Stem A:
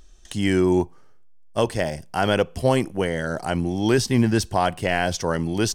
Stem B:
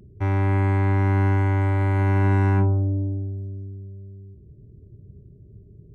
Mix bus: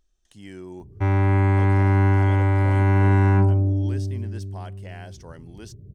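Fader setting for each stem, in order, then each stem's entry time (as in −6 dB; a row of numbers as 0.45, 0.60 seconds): −20.0, +2.0 decibels; 0.00, 0.80 seconds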